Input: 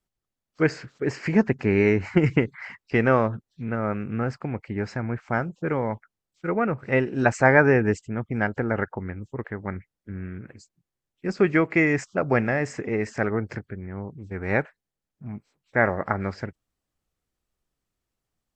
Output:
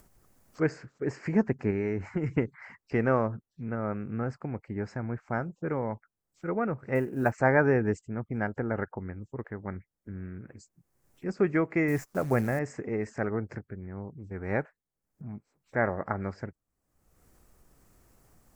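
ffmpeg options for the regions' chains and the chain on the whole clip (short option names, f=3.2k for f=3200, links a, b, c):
-filter_complex "[0:a]asettb=1/sr,asplit=3[a][b][c];[a]atrim=end=1.704[d];[b]atrim=start=1.7:end=2.38,asetpts=PTS-STARTPTS,afade=t=in:d=0.004:c=qsin,afade=t=out:st=0.676:d=0.004:c=qsin,bandreject=f=4.6k:w=19,acompressor=threshold=-21dB:ratio=3:attack=3.2:release=140:knee=1:detection=peak[e];[c]atrim=start=2.376[f];[d][e]acrossfade=d=0.004:c1=hsin:c2=qsin[g];[g][f]acrossfade=d=0.004:c1=qsin:c2=hsin,asettb=1/sr,asplit=3[h][i][j];[h]atrim=end=6.954[k];[i]atrim=start=6.95:end=7.38,asetpts=PTS-STARTPTS,afade=t=in:d=0.004:c=qsin,afade=t=out:st=0.426:d=0.004:c=qsin,lowpass=3.5k,acrusher=bits=8:mode=log:mix=0:aa=0.000001[l];[j]atrim=start=7.376[m];[k][l]acrossfade=d=0.004:c1=hsin:c2=qsin[n];[n][m]acrossfade=d=0.004:c1=qsin:c2=hsin,asettb=1/sr,asplit=3[o][p][q];[o]atrim=end=11.884[r];[p]atrim=start=11.88:end=12.59,asetpts=PTS-STARTPTS,afade=t=in:d=0.004:c=qsin,afade=t=out:st=0.706:d=0.004:c=qsin,lowshelf=f=130:g=6.5,acrusher=bits=7:dc=4:mix=0:aa=0.000001[s];[q]atrim=start=12.586[t];[r][s]acrossfade=d=0.004:c1=hsin:c2=qsin[u];[u][t]acrossfade=d=0.004:c1=qsin:c2=hsin,acompressor=mode=upward:threshold=-33dB:ratio=2.5,equalizer=f=3.4k:t=o:w=1.2:g=-12,volume=-5dB"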